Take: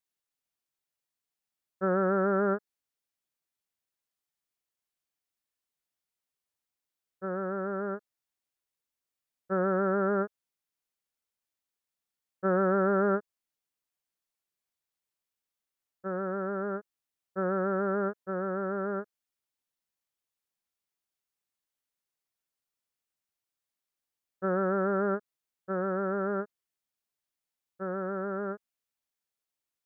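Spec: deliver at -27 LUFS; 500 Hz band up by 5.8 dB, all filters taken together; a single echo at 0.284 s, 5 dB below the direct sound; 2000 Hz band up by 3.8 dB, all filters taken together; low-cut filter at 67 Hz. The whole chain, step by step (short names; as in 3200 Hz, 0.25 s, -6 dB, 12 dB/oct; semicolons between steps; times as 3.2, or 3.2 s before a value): HPF 67 Hz; bell 500 Hz +7.5 dB; bell 2000 Hz +5 dB; echo 0.284 s -5 dB; gain -1.5 dB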